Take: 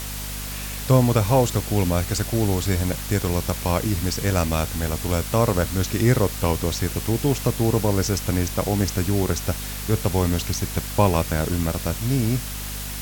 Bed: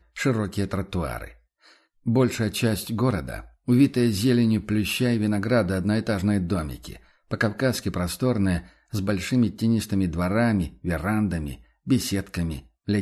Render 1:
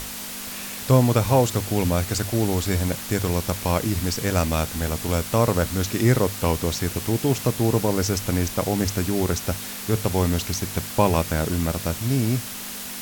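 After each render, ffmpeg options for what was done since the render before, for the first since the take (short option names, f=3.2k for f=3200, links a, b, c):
-af "bandreject=f=50:t=h:w=6,bandreject=f=100:t=h:w=6,bandreject=f=150:t=h:w=6"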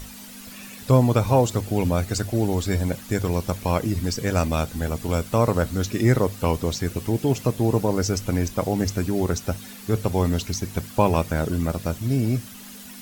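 -af "afftdn=nr=11:nf=-34"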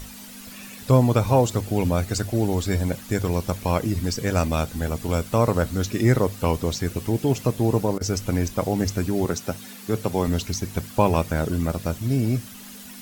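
-filter_complex "[0:a]asettb=1/sr,asplit=3[a][b][c];[a]atrim=end=9.254[d];[b]atrim=start=9.25:end=10.28,asetpts=PTS-STARTPTS,afade=t=in:d=0.004:c=qsin,afade=t=out:st=1.026:d=0.004:c=qsin,highpass=130[e];[c]atrim=start=10.276[f];[d][e]acrossfade=d=0.004:c1=hsin:c2=qsin[g];[g][f]acrossfade=d=0.004:c1=qsin:c2=hsin,asplit=3[h][i][j];[h]atrim=end=7.98,asetpts=PTS-STARTPTS,afade=t=out:st=7.68:d=0.3:c=log:silence=0.0891251[k];[i]atrim=start=7.98:end=8.01,asetpts=PTS-STARTPTS,volume=-21dB[l];[j]atrim=start=8.01,asetpts=PTS-STARTPTS,afade=t=in:d=0.3:c=log:silence=0.0891251[m];[k][l][m]concat=n=3:v=0:a=1"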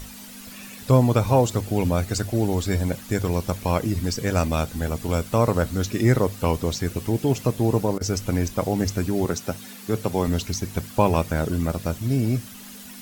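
-af anull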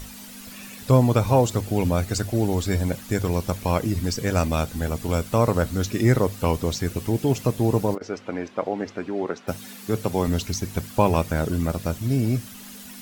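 -filter_complex "[0:a]asplit=3[a][b][c];[a]afade=t=out:st=7.94:d=0.02[d];[b]highpass=320,lowpass=2.4k,afade=t=in:st=7.94:d=0.02,afade=t=out:st=9.47:d=0.02[e];[c]afade=t=in:st=9.47:d=0.02[f];[d][e][f]amix=inputs=3:normalize=0"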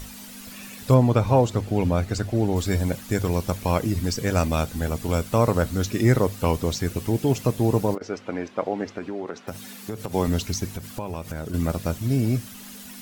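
-filter_complex "[0:a]asettb=1/sr,asplit=3[a][b][c];[a]atrim=end=0.944[d];[b]atrim=start=0.94:end=2.56,asetpts=PTS-STARTPTS,afade=t=in:d=0.004:c=qsin,afade=t=out:st=1.616:d=0.004:c=qsin,lowpass=f=3.4k:p=1[e];[c]atrim=start=2.556[f];[d][e]acrossfade=d=0.004:c1=hsin:c2=qsin[g];[g][f]acrossfade=d=0.004:c1=qsin:c2=hsin,asettb=1/sr,asplit=3[h][i][j];[h]atrim=end=8.984[k];[i]atrim=start=8.98:end=10.14,asetpts=PTS-STARTPTS,afade=t=in:d=0.004:c=qsin,afade=t=out:st=1.156:d=0.004:c=qsin,acompressor=threshold=-26dB:ratio=6:attack=3.2:release=140:knee=1:detection=peak[l];[j]atrim=start=10.136[m];[k][l]acrossfade=d=0.004:c1=hsin:c2=qsin[n];[n][m]acrossfade=d=0.004:c1=qsin:c2=hsin,asettb=1/sr,asplit=3[o][p][q];[o]atrim=end=10.704[r];[p]atrim=start=10.7:end=11.54,asetpts=PTS-STARTPTS,afade=t=in:d=0.004:c=qsin,afade=t=out:st=0.836:d=0.004:c=qsin,acompressor=threshold=-28dB:ratio=5:attack=3.2:release=140:knee=1:detection=peak[s];[q]atrim=start=11.536[t];[r][s]acrossfade=d=0.004:c1=hsin:c2=qsin[u];[u][t]acrossfade=d=0.004:c1=qsin:c2=hsin"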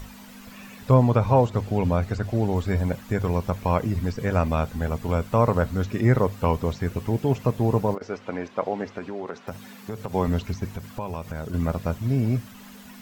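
-filter_complex "[0:a]acrossover=split=2600[a][b];[b]acompressor=threshold=-48dB:ratio=4:attack=1:release=60[c];[a][c]amix=inputs=2:normalize=0,equalizer=f=315:t=o:w=0.33:g=-6,equalizer=f=1k:t=o:w=0.33:g=3,equalizer=f=10k:t=o:w=0.33:g=-6"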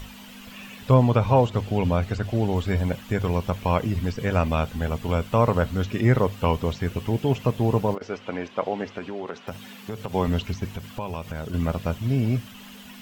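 -af "equalizer=f=3k:t=o:w=0.57:g=9"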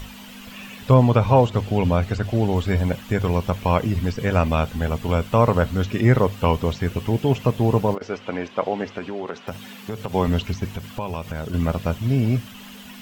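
-af "volume=3dB,alimiter=limit=-3dB:level=0:latency=1"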